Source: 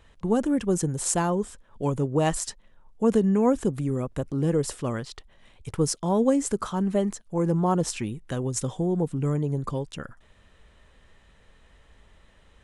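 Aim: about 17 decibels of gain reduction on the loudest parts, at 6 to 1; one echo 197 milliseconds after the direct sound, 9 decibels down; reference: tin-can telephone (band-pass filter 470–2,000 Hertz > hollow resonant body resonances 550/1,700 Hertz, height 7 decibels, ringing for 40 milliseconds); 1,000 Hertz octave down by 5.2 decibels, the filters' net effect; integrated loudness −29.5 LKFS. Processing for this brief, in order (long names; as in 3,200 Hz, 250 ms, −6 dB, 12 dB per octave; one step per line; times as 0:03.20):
parametric band 1,000 Hz −6 dB
downward compressor 6 to 1, threshold −36 dBFS
band-pass filter 470–2,000 Hz
single-tap delay 197 ms −9 dB
hollow resonant body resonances 550/1,700 Hz, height 7 dB, ringing for 40 ms
level +16 dB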